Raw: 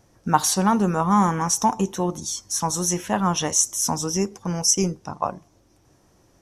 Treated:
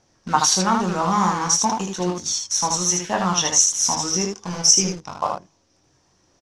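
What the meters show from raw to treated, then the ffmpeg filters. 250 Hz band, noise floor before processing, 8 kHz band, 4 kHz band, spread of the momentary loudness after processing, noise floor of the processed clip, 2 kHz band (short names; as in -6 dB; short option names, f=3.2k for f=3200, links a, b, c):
-2.0 dB, -60 dBFS, +5.0 dB, +7.0 dB, 11 LU, -63 dBFS, +3.5 dB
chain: -filter_complex "[0:a]lowshelf=f=430:g=-7.5,bandreject=f=50:t=h:w=6,bandreject=f=100:t=h:w=6,asplit=2[a][b];[b]acrusher=bits=4:mix=0:aa=0.000001,volume=-6.5dB[c];[a][c]amix=inputs=2:normalize=0,lowpass=f=5.6k:t=q:w=1.6,aphaser=in_gain=1:out_gain=1:delay=1.2:decay=0.24:speed=1.9:type=triangular,asplit=2[d][e];[e]aecho=0:1:22|78:0.531|0.631[f];[d][f]amix=inputs=2:normalize=0,volume=-3dB"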